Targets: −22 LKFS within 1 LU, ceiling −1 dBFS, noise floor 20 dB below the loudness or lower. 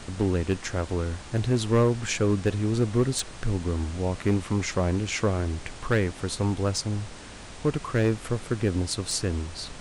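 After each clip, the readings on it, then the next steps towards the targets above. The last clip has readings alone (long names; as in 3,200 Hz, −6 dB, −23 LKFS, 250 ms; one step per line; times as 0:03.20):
share of clipped samples 0.9%; peaks flattened at −15.5 dBFS; background noise floor −42 dBFS; target noise floor −47 dBFS; integrated loudness −27.0 LKFS; sample peak −15.5 dBFS; target loudness −22.0 LKFS
→ clipped peaks rebuilt −15.5 dBFS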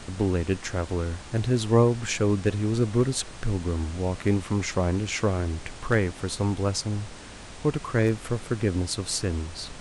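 share of clipped samples 0.0%; background noise floor −42 dBFS; target noise floor −47 dBFS
→ noise reduction from a noise print 6 dB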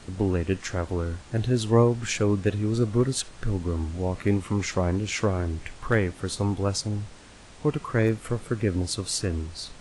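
background noise floor −47 dBFS; integrated loudness −26.5 LKFS; sample peak −7.5 dBFS; target loudness −22.0 LKFS
→ level +4.5 dB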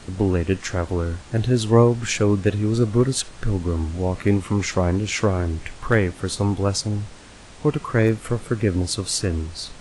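integrated loudness −22.0 LKFS; sample peak −3.0 dBFS; background noise floor −43 dBFS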